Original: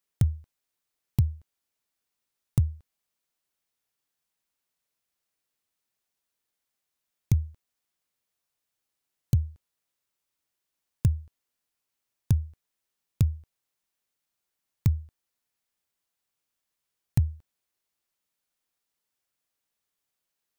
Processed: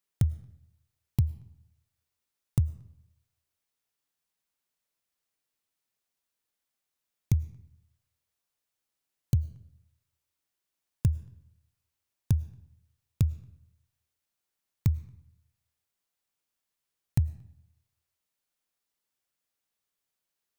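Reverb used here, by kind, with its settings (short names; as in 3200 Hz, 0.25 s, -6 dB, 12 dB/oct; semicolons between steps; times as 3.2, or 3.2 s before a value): digital reverb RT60 0.81 s, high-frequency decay 0.75×, pre-delay 65 ms, DRR 19 dB; gain -2 dB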